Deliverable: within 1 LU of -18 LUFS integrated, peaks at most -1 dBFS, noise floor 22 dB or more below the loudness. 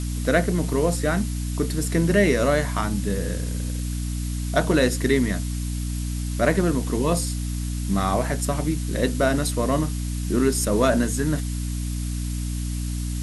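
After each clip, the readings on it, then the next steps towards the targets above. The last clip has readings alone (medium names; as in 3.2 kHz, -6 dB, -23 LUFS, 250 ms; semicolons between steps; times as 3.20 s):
hum 60 Hz; highest harmonic 300 Hz; hum level -25 dBFS; noise floor -28 dBFS; noise floor target -46 dBFS; loudness -24.0 LUFS; peak level -5.5 dBFS; loudness target -18.0 LUFS
-> hum notches 60/120/180/240/300 Hz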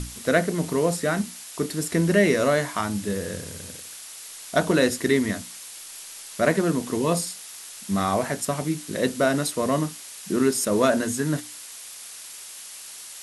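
hum not found; noise floor -41 dBFS; noise floor target -46 dBFS
-> noise reduction 6 dB, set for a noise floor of -41 dBFS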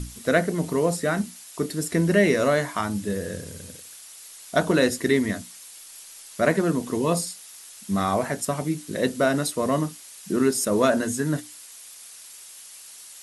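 noise floor -45 dBFS; noise floor target -46 dBFS
-> noise reduction 6 dB, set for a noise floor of -45 dBFS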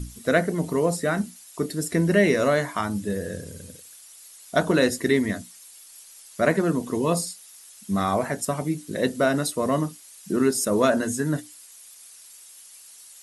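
noise floor -48 dBFS; loudness -24.0 LUFS; peak level -6.0 dBFS; loudness target -18.0 LUFS
-> trim +6 dB; peak limiter -1 dBFS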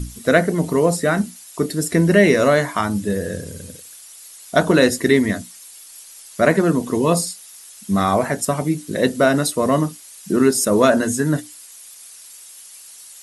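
loudness -18.5 LUFS; peak level -1.0 dBFS; noise floor -42 dBFS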